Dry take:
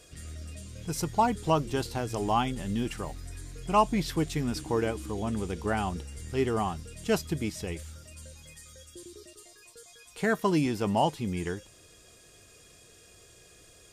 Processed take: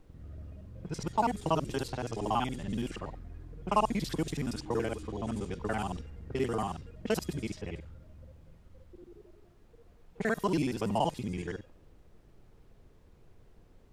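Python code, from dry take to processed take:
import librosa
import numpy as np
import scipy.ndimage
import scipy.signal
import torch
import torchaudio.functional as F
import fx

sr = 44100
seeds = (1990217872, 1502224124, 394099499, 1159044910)

y = fx.local_reverse(x, sr, ms=47.0)
y = fx.env_lowpass(y, sr, base_hz=360.0, full_db=-26.0)
y = fx.dmg_noise_colour(y, sr, seeds[0], colour='brown', level_db=-53.0)
y = y * librosa.db_to_amplitude(-3.5)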